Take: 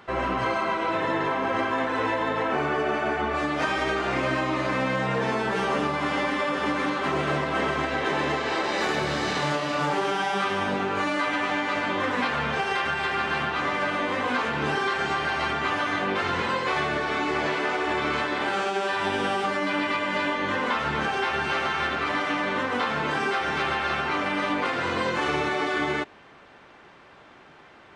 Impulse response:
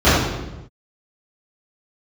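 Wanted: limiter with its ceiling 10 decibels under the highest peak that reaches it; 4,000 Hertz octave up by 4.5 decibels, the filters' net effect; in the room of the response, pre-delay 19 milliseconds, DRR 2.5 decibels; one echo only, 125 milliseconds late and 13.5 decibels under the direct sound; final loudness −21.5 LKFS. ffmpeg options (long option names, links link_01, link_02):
-filter_complex "[0:a]equalizer=frequency=4000:width_type=o:gain=6,alimiter=limit=-21.5dB:level=0:latency=1,aecho=1:1:125:0.211,asplit=2[link_01][link_02];[1:a]atrim=start_sample=2205,adelay=19[link_03];[link_02][link_03]afir=irnorm=-1:irlink=0,volume=-30dB[link_04];[link_01][link_04]amix=inputs=2:normalize=0,volume=5dB"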